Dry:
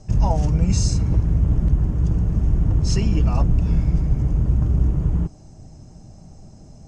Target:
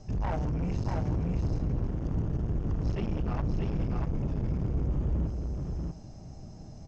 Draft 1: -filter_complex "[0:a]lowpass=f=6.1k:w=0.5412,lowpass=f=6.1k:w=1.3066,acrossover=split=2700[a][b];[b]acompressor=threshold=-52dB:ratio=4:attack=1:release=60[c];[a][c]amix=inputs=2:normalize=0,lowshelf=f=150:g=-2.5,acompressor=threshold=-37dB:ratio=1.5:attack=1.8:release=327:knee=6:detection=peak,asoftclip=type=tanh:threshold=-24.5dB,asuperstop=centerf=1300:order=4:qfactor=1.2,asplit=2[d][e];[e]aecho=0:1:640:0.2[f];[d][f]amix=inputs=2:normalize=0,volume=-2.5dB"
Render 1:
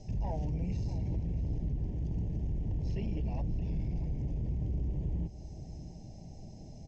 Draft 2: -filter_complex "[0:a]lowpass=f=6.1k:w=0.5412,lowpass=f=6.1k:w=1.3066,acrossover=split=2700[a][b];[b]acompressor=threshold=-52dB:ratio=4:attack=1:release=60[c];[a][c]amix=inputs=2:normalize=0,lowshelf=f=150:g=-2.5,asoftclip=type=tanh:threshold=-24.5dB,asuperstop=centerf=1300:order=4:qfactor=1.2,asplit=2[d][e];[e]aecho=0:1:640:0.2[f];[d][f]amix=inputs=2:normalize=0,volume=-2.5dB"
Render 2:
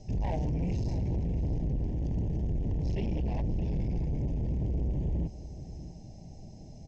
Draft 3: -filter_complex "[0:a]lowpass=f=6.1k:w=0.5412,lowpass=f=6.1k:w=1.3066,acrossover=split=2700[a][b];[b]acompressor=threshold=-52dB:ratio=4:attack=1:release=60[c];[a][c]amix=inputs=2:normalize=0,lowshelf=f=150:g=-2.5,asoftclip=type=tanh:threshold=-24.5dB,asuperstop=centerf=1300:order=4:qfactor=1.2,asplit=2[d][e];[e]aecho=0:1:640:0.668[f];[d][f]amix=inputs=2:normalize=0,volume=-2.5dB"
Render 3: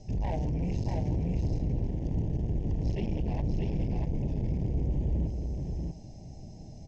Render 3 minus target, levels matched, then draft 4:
1000 Hz band -3.0 dB
-filter_complex "[0:a]lowpass=f=6.1k:w=0.5412,lowpass=f=6.1k:w=1.3066,acrossover=split=2700[a][b];[b]acompressor=threshold=-52dB:ratio=4:attack=1:release=60[c];[a][c]amix=inputs=2:normalize=0,lowshelf=f=150:g=-2.5,asoftclip=type=tanh:threshold=-24.5dB,asplit=2[d][e];[e]aecho=0:1:640:0.668[f];[d][f]amix=inputs=2:normalize=0,volume=-2.5dB"

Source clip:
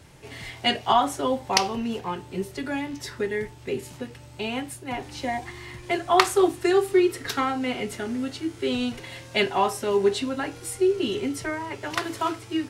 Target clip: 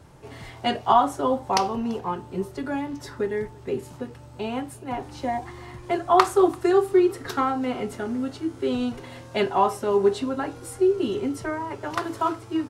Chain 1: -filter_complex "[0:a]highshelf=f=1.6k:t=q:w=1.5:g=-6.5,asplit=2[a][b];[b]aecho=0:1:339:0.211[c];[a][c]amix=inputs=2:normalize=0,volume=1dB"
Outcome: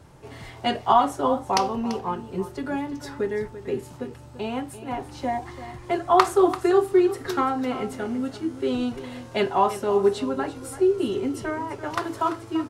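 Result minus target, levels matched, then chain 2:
echo-to-direct +12 dB
-filter_complex "[0:a]highshelf=f=1.6k:t=q:w=1.5:g=-6.5,asplit=2[a][b];[b]aecho=0:1:339:0.0531[c];[a][c]amix=inputs=2:normalize=0,volume=1dB"

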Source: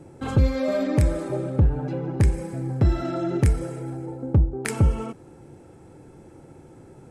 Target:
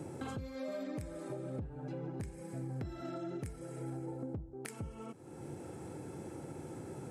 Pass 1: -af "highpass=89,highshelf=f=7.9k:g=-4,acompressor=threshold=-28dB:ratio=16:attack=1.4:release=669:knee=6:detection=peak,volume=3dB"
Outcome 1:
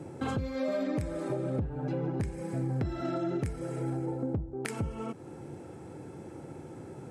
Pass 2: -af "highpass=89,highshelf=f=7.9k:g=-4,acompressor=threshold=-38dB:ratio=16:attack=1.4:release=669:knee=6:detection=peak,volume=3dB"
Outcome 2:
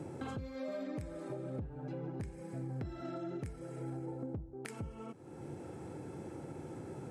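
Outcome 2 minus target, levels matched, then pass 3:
8000 Hz band -5.0 dB
-af "highpass=89,highshelf=f=7.9k:g=7,acompressor=threshold=-38dB:ratio=16:attack=1.4:release=669:knee=6:detection=peak,volume=3dB"

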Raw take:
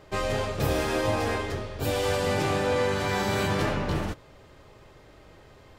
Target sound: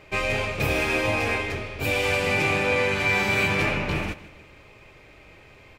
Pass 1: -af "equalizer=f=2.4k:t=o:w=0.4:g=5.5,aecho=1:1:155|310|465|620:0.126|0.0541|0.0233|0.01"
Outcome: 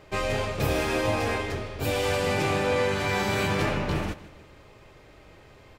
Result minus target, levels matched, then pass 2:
2000 Hz band -3.5 dB
-af "equalizer=f=2.4k:t=o:w=0.4:g=16.5,aecho=1:1:155|310|465|620:0.126|0.0541|0.0233|0.01"

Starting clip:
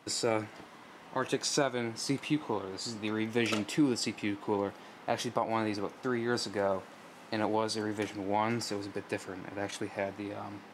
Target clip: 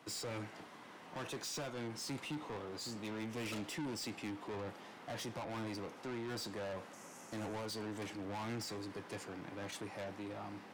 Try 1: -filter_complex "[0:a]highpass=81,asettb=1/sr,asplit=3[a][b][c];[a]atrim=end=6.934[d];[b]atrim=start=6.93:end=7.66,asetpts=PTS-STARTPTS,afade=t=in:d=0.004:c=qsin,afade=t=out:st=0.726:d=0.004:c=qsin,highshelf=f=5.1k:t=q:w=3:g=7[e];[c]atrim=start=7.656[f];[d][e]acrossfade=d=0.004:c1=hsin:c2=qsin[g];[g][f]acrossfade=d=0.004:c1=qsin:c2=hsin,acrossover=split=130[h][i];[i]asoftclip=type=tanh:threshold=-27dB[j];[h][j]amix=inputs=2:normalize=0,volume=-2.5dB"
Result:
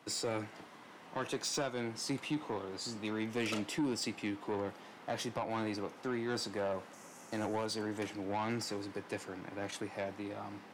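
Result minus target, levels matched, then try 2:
soft clip: distortion -8 dB
-filter_complex "[0:a]highpass=81,asettb=1/sr,asplit=3[a][b][c];[a]atrim=end=6.934[d];[b]atrim=start=6.93:end=7.66,asetpts=PTS-STARTPTS,afade=t=in:d=0.004:c=qsin,afade=t=out:st=0.726:d=0.004:c=qsin,highshelf=f=5.1k:t=q:w=3:g=7[e];[c]atrim=start=7.656[f];[d][e]acrossfade=d=0.004:c1=hsin:c2=qsin[g];[g][f]acrossfade=d=0.004:c1=qsin:c2=hsin,acrossover=split=130[h][i];[i]asoftclip=type=tanh:threshold=-38dB[j];[h][j]amix=inputs=2:normalize=0,volume=-2.5dB"

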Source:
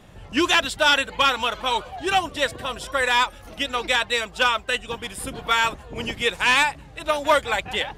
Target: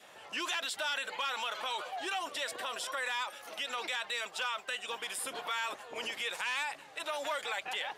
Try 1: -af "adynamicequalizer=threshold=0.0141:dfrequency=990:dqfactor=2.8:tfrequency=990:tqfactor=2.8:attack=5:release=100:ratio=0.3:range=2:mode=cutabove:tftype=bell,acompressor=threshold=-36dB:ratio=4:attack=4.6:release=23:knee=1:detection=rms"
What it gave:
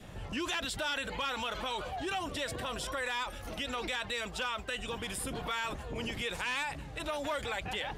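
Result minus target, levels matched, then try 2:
500 Hz band +3.5 dB
-af "adynamicequalizer=threshold=0.0141:dfrequency=990:dqfactor=2.8:tfrequency=990:tqfactor=2.8:attack=5:release=100:ratio=0.3:range=2:mode=cutabove:tftype=bell,highpass=640,acompressor=threshold=-36dB:ratio=4:attack=4.6:release=23:knee=1:detection=rms"

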